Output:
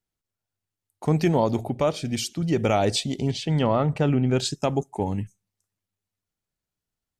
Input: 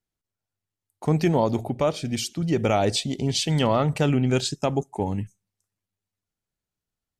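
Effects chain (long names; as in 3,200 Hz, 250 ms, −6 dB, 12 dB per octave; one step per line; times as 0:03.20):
0:03.31–0:04.40: low-pass filter 1,800 Hz 6 dB per octave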